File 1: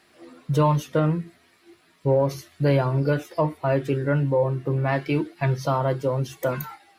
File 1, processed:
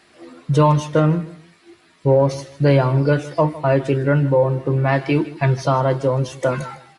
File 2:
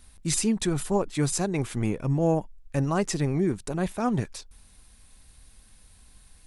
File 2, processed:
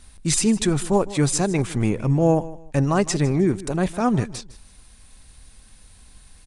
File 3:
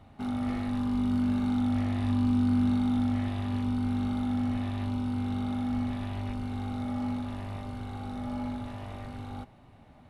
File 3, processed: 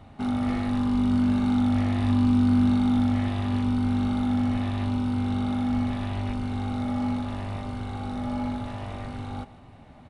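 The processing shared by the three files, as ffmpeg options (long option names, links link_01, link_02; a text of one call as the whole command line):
ffmpeg -i in.wav -filter_complex "[0:a]asplit=2[link_01][link_02];[link_02]aecho=0:1:156|312:0.133|0.0333[link_03];[link_01][link_03]amix=inputs=2:normalize=0,aresample=22050,aresample=44100,volume=5.5dB" out.wav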